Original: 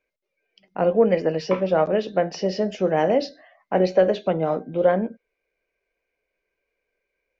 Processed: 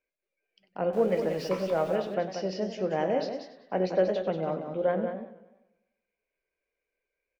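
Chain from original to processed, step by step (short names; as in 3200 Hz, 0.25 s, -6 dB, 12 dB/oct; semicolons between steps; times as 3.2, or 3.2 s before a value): 0.93–1.96 zero-crossing step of -35 dBFS; echo 0.185 s -8 dB; warbling echo 97 ms, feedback 52%, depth 141 cents, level -13 dB; gain -8.5 dB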